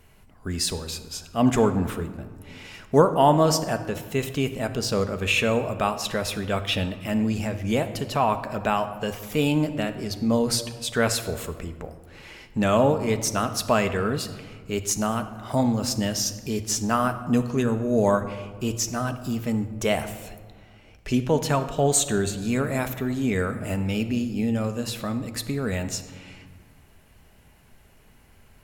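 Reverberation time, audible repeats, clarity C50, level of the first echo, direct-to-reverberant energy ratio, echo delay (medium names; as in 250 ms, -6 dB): 1.7 s, no echo, 11.0 dB, no echo, 8.0 dB, no echo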